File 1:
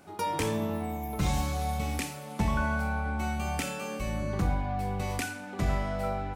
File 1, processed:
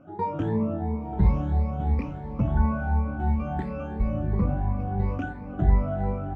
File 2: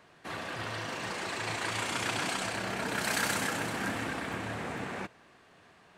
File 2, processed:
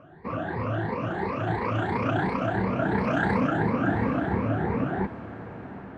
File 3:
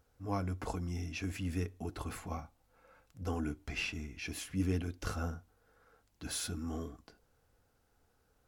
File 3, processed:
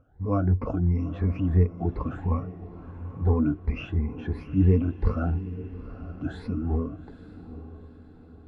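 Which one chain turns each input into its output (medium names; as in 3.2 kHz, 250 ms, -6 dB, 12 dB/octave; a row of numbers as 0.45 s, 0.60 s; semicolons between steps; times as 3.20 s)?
drifting ripple filter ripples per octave 0.9, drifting +2.9 Hz, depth 17 dB; low-pass 1.3 kHz 12 dB/octave; bass shelf 380 Hz +9 dB; echo that smears into a reverb 863 ms, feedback 47%, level -14 dB; normalise loudness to -27 LUFS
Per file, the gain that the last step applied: -4.5 dB, +3.5 dB, +3.0 dB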